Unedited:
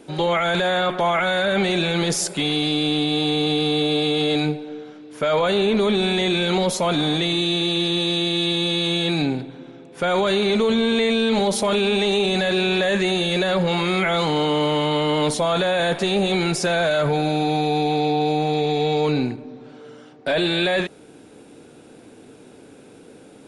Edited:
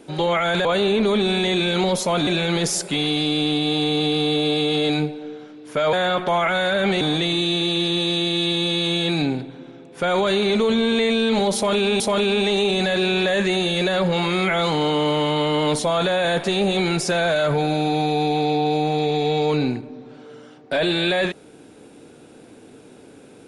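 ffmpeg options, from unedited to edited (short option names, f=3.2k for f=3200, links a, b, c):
-filter_complex "[0:a]asplit=6[a][b][c][d][e][f];[a]atrim=end=0.652[g];[b]atrim=start=5.388:end=7.012[h];[c]atrim=start=1.728:end=5.392[i];[d]atrim=start=0.648:end=1.732[j];[e]atrim=start=7.008:end=12.002[k];[f]atrim=start=11.548[l];[g][h]acrossfade=d=0.004:c1=hsin:c2=hsin[m];[m][i]acrossfade=d=0.004:c1=hsin:c2=hsin[n];[n][j]acrossfade=d=0.004:c1=hsin:c2=hsin[o];[o][k]acrossfade=d=0.004:c1=hsin:c2=hsin[p];[p][l]acrossfade=d=0.004:c1=hsin:c2=hsin"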